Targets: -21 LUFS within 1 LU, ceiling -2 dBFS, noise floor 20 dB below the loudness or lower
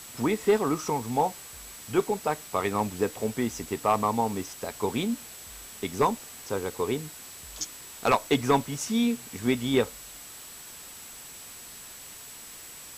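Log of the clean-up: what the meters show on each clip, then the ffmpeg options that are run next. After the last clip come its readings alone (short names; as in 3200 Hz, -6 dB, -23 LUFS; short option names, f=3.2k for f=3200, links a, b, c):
steady tone 7800 Hz; tone level -47 dBFS; noise floor -45 dBFS; noise floor target -48 dBFS; loudness -28.0 LUFS; peak -11.5 dBFS; loudness target -21.0 LUFS
-> -af "bandreject=f=7.8k:w=30"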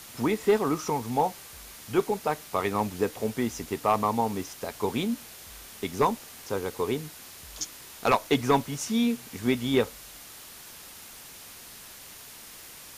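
steady tone none; noise floor -46 dBFS; noise floor target -49 dBFS
-> -af "afftdn=nr=6:nf=-46"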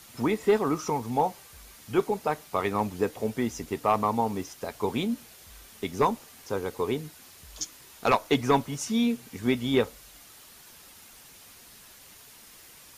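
noise floor -51 dBFS; loudness -28.5 LUFS; peak -11.5 dBFS; loudness target -21.0 LUFS
-> -af "volume=7.5dB"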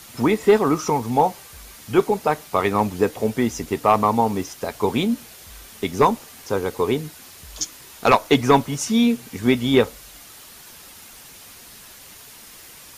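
loudness -21.0 LUFS; peak -4.0 dBFS; noise floor -44 dBFS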